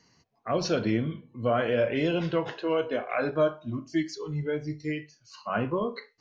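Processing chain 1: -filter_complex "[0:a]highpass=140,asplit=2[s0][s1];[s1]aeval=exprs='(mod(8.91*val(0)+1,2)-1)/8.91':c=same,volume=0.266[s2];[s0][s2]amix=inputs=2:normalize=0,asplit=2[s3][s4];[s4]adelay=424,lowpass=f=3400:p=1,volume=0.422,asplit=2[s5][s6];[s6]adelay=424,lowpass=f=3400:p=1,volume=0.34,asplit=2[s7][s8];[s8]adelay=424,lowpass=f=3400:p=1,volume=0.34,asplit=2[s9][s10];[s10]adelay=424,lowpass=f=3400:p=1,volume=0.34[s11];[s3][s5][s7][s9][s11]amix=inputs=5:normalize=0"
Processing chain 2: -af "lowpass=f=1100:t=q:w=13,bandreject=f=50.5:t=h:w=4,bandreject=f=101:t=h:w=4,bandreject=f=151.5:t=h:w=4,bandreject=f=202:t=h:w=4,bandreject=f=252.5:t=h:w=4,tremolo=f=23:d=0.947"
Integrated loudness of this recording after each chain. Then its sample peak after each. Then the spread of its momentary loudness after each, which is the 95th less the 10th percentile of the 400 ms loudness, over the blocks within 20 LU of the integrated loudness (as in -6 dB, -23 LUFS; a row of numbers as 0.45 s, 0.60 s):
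-27.0 LUFS, -26.5 LUFS; -13.5 dBFS, -6.0 dBFS; 7 LU, 14 LU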